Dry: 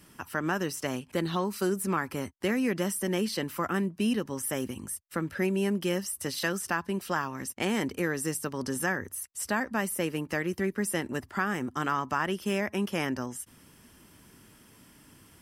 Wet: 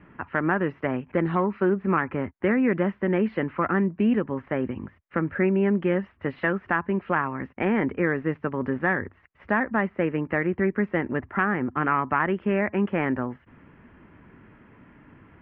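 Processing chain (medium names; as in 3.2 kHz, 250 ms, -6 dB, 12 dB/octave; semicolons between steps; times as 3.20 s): self-modulated delay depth 0.081 ms; steep low-pass 2.3 kHz 36 dB/octave; trim +6 dB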